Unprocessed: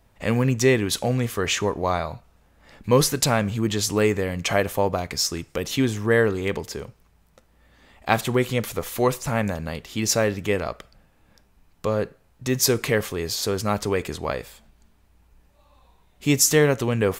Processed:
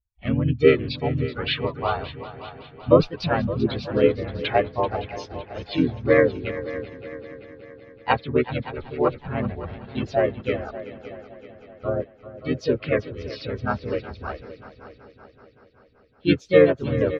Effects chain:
spectral dynamics exaggerated over time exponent 2
elliptic low-pass filter 3,700 Hz, stop band 50 dB
dynamic equaliser 450 Hz, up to +6 dB, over −37 dBFS, Q 1.7
in parallel at −3 dB: downward compressor 6 to 1, threshold −35 dBFS, peak gain reduction 21.5 dB
on the sum: echo machine with several playback heads 190 ms, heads second and third, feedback 53%, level −15 dB
pitch-shifted copies added −7 semitones −6 dB, +3 semitones −1 dB
level −1.5 dB

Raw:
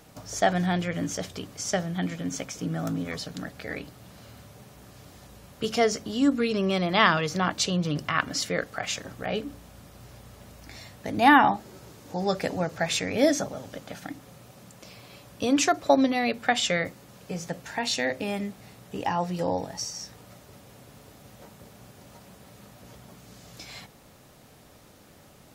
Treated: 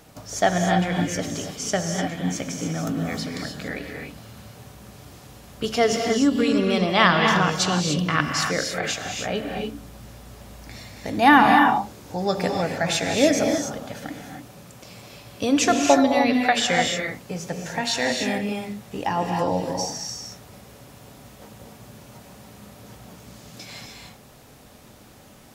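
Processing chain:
reverb whose tail is shaped and stops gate 320 ms rising, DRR 2 dB
0:05.64–0:06.54: surface crackle 41 per second −38 dBFS
level +2.5 dB

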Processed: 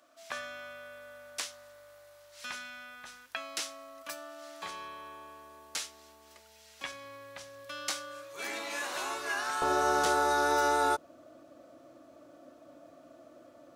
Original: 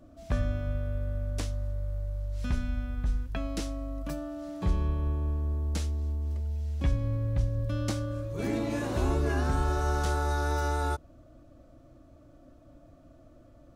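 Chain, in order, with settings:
high-pass filter 1,200 Hz 12 dB per octave, from 0:09.62 380 Hz
level +6 dB

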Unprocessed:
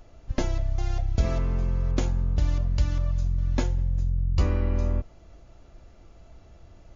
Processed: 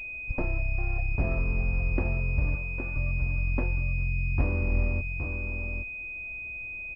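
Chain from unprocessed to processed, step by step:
wavefolder on the positive side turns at −17 dBFS
0:02.55–0:02.96: high-pass filter 790 Hz
on a send: single-tap delay 817 ms −7 dB
on the sum: switching amplifier with a slow clock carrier 2,500 Hz
level −2.5 dB

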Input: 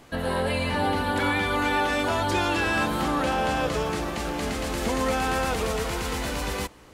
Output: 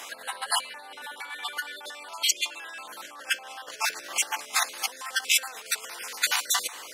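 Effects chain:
time-frequency cells dropped at random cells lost 33%
brickwall limiter −20 dBFS, peak gain reduction 5.5 dB
compressor whose output falls as the input rises −36 dBFS, ratio −0.5
high-pass filter 900 Hz 12 dB per octave
parametric band 11,000 Hz +7 dB 2.6 octaves
level +5 dB

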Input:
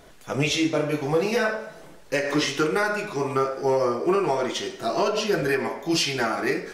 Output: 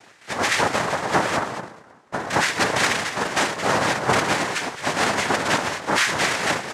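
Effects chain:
0:01.36–0:02.30: inverse Chebyshev band-stop filter 1,200–3,200 Hz, stop band 60 dB
multi-tap delay 218/224 ms −12.5/−17 dB
cochlear-implant simulation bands 2
parametric band 1,800 Hz +14.5 dB 1.3 octaves
level −2.5 dB

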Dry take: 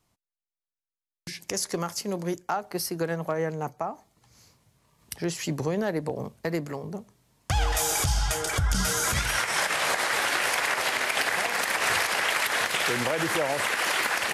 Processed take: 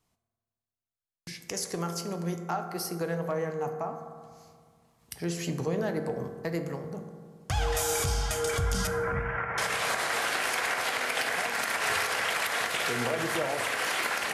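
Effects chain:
0:08.87–0:09.58: inverse Chebyshev low-pass filter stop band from 3,800 Hz, stop band 40 dB
on a send: convolution reverb RT60 1.9 s, pre-delay 3 ms, DRR 4.5 dB
on the sum: level −4.5 dB

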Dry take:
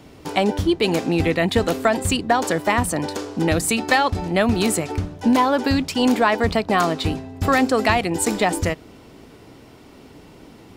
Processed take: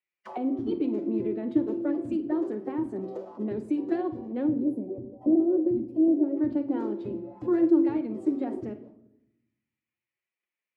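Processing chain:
noise gate −38 dBFS, range −31 dB
on a send: flutter between parallel walls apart 8.5 metres, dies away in 0.22 s
on the sum: gain on a spectral selection 0:04.47–0:06.37, 790–9,300 Hz −19 dB
phase-vocoder pitch shift with formants kept +4.5 semitones
envelope filter 310–2,200 Hz, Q 4.9, down, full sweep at −21 dBFS
rectangular room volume 2,600 cubic metres, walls furnished, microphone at 0.95 metres

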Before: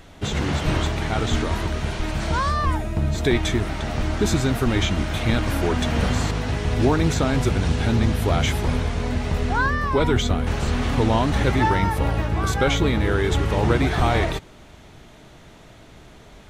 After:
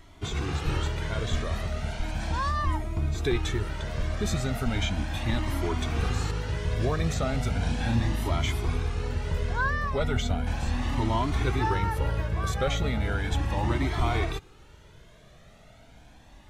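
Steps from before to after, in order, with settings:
0:07.57–0:08.29: double-tracking delay 34 ms −3.5 dB
flanger whose copies keep moving one way rising 0.36 Hz
level −3 dB

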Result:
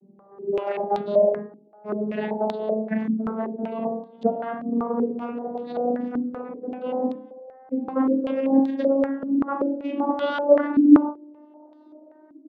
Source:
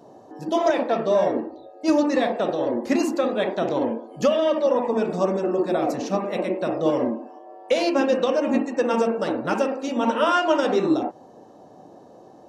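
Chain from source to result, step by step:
vocoder with a gliding carrier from G3, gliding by +8 semitones
double-tracking delay 37 ms −7 dB
low-pass on a step sequencer 5.2 Hz 270–3,800 Hz
level −5 dB

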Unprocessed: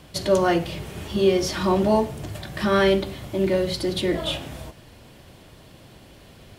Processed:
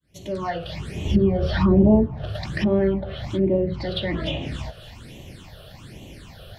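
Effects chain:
fade in at the beginning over 1.32 s
all-pass phaser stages 8, 1.2 Hz, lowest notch 270–1,500 Hz
on a send: delay with a high-pass on its return 279 ms, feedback 60%, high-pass 1,700 Hz, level −22.5 dB
on the sum: treble cut that deepens with the level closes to 880 Hz, closed at −21.5 dBFS
in parallel at +2 dB: downward compressor, threshold −32 dBFS, peak gain reduction 15 dB
0:01.05–0:02.06: on the sum: low-shelf EQ 190 Hz +10.5 dB

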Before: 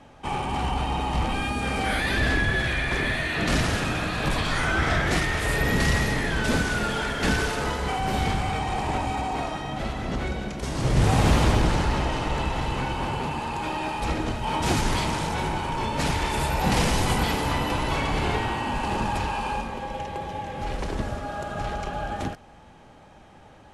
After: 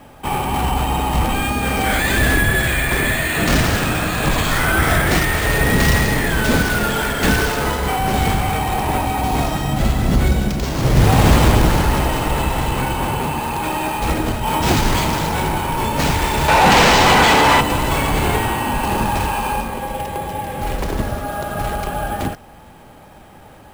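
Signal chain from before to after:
0:09.23–0:10.63: bass and treble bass +8 dB, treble +7 dB
sample-rate reduction 11,000 Hz, jitter 0%
0:16.48–0:17.61: mid-hump overdrive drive 20 dB, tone 3,400 Hz, clips at −10 dBFS
level +7.5 dB

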